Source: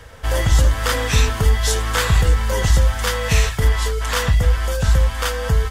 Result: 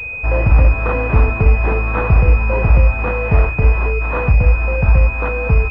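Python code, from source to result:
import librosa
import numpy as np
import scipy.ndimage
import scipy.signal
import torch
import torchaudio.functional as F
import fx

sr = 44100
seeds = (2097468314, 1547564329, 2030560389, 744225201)

y = fx.pwm(x, sr, carrier_hz=2500.0)
y = y * 10.0 ** (4.0 / 20.0)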